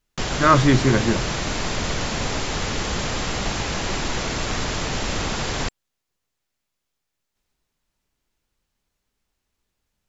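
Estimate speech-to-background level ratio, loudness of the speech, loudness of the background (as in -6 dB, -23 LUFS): 6.5 dB, -19.0 LUFS, -25.5 LUFS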